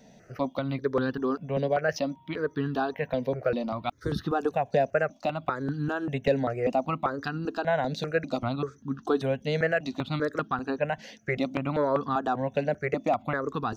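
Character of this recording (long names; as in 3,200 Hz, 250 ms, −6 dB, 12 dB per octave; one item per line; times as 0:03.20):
notches that jump at a steady rate 5.1 Hz 330–2,200 Hz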